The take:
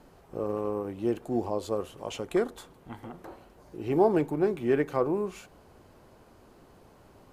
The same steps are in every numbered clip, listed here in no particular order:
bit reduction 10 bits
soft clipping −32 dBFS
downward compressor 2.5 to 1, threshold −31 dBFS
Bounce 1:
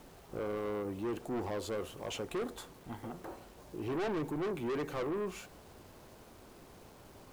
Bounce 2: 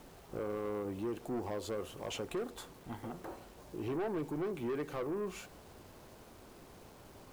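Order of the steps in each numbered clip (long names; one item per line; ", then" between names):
bit reduction, then soft clipping, then downward compressor
downward compressor, then bit reduction, then soft clipping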